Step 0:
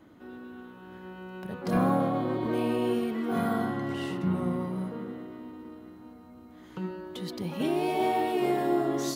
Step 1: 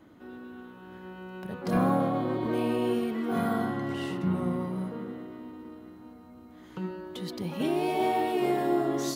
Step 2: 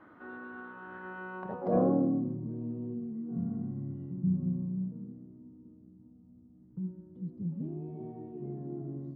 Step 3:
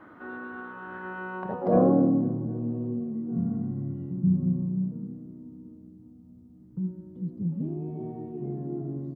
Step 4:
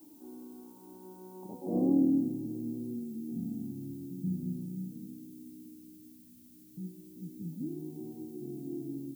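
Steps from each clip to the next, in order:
nothing audible
low-pass sweep 1400 Hz -> 160 Hz, 1.29–2.39; tilt +2 dB/oct
feedback echo 0.258 s, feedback 59%, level -19.5 dB; gain +6 dB
vocal tract filter u; added noise violet -61 dBFS

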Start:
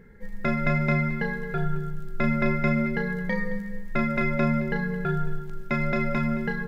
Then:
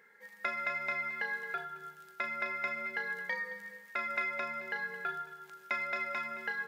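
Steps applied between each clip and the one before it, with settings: compressor 3:1, threshold -26 dBFS, peak gain reduction 6.5 dB; HPF 930 Hz 12 dB/oct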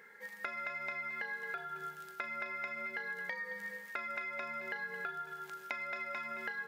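compressor 6:1, threshold -43 dBFS, peak gain reduction 13 dB; gain +5 dB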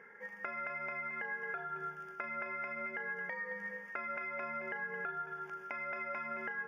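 in parallel at +1 dB: limiter -32.5 dBFS, peak gain reduction 11 dB; on the sum: running mean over 11 samples; gain -3 dB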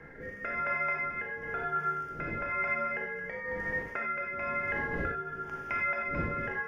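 wind noise 380 Hz -53 dBFS; rotary speaker horn 1 Hz; non-linear reverb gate 0.12 s flat, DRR 0 dB; gain +6.5 dB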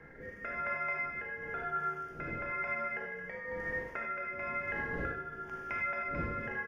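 feedback echo 77 ms, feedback 56%, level -10 dB; gain -4 dB

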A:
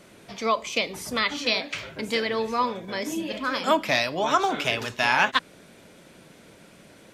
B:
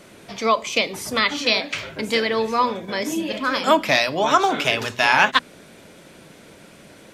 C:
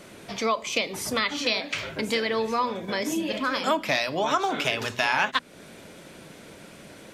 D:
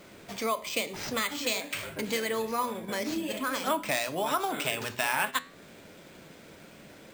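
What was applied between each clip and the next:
notches 60/120/180/240 Hz; gain +5 dB
compressor 2:1, threshold -26 dBFS, peak gain reduction 9 dB
careless resampling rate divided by 4×, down none, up hold; flange 0.51 Hz, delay 9.6 ms, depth 4.5 ms, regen +85%

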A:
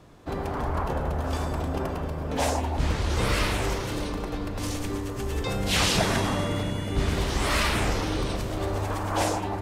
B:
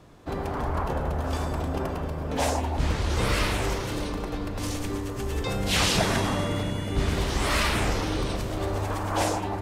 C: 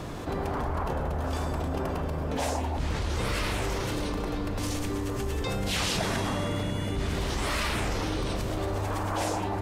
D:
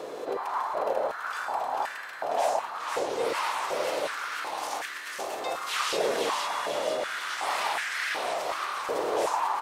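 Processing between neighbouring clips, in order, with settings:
nothing audible
fast leveller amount 70%; gain -7 dB
whine 4100 Hz -59 dBFS; frequency-shifting echo 0.492 s, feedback 53%, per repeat +38 Hz, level -3.5 dB; stepped high-pass 2.7 Hz 470–1700 Hz; gain -3 dB

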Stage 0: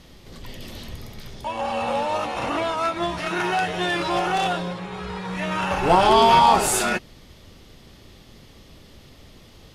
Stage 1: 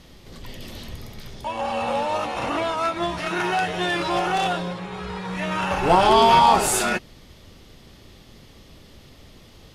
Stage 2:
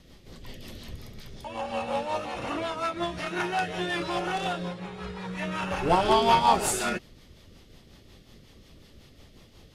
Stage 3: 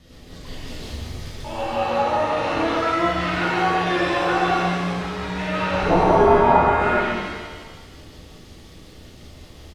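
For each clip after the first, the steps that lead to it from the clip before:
nothing audible
rotary speaker horn 5.5 Hz; gain -3.5 dB
outdoor echo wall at 23 m, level -6 dB; treble ducked by the level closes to 840 Hz, closed at -21 dBFS; shimmer reverb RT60 1.4 s, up +7 st, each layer -8 dB, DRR -7.5 dB

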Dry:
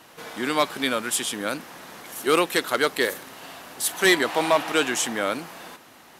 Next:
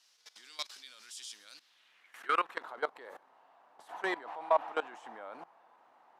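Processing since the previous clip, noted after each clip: level quantiser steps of 19 dB; band-pass sweep 5200 Hz -> 850 Hz, 1.49–2.69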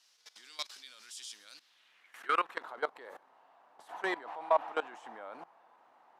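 nothing audible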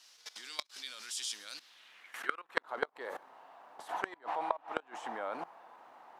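flipped gate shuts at -23 dBFS, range -26 dB; gain +7.5 dB

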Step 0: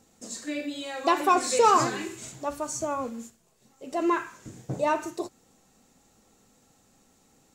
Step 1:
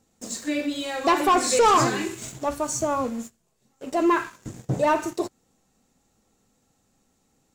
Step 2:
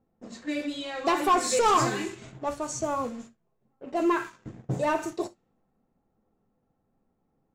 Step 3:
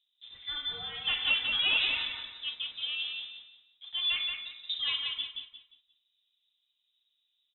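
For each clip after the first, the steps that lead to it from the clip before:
low shelf 180 Hz +4.5 dB; sample leveller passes 2; gain -2.5 dB
low-pass opened by the level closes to 1100 Hz, open at -21 dBFS; non-linear reverb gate 90 ms falling, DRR 10.5 dB; gain -4.5 dB
inverted band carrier 3800 Hz; on a send: feedback echo 0.176 s, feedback 30%, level -4.5 dB; on the sum: gain -6.5 dB

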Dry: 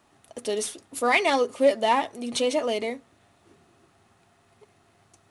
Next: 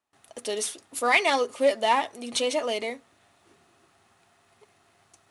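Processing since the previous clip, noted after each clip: gate with hold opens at -52 dBFS; low shelf 470 Hz -8.5 dB; gain +1.5 dB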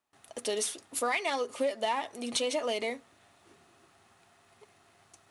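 compressor 6:1, threshold -27 dBFS, peak gain reduction 11.5 dB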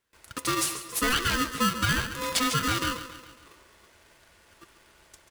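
on a send: feedback echo 0.138 s, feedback 52%, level -12 dB; on the sum: polarity switched at an audio rate 760 Hz; gain +4.5 dB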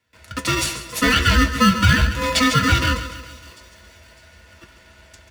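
thin delay 0.605 s, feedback 41%, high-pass 5000 Hz, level -17 dB; reverb RT60 0.10 s, pre-delay 3 ms, DRR 3 dB

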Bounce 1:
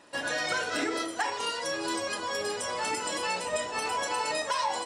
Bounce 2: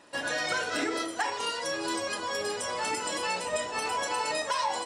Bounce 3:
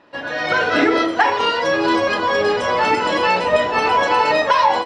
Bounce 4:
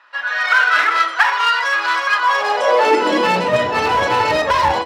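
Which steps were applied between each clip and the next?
nothing audible
AGC gain up to 11 dB; air absorption 250 m; gain +5.5 dB
one-sided clip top -16 dBFS; high-pass sweep 1300 Hz -> 72 Hz, 2.2–3.9; gain +1 dB

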